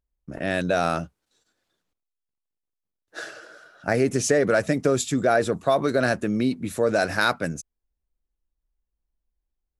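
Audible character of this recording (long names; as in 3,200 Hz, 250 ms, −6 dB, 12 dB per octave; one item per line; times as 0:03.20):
background noise floor −84 dBFS
spectral slope −4.5 dB per octave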